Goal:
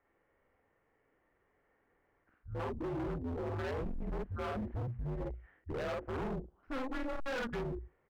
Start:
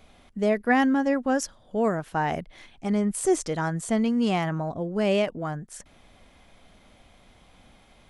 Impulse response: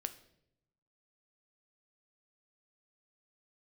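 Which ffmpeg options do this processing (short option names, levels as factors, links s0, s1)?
-filter_complex "[0:a]areverse,asplit=2[s0][s1];[1:a]atrim=start_sample=2205[s2];[s1][s2]afir=irnorm=-1:irlink=0,volume=0.316[s3];[s0][s3]amix=inputs=2:normalize=0,highpass=f=150:t=q:w=0.5412,highpass=f=150:t=q:w=1.307,lowpass=f=2300:t=q:w=0.5176,lowpass=f=2300:t=q:w=0.7071,lowpass=f=2300:t=q:w=1.932,afreqshift=-260,lowshelf=f=180:g=-7,bandreject=f=60:t=h:w=6,bandreject=f=120:t=h:w=6,bandreject=f=180:t=h:w=6,bandreject=f=240:t=h:w=6,bandreject=f=300:t=h:w=6,bandreject=f=360:t=h:w=6,asplit=2[s4][s5];[s5]adelay=47,volume=0.794[s6];[s4][s6]amix=inputs=2:normalize=0,asoftclip=type=tanh:threshold=0.0944,afwtdn=0.0224,acompressor=threshold=0.0355:ratio=6,volume=47.3,asoftclip=hard,volume=0.0211,volume=0.841"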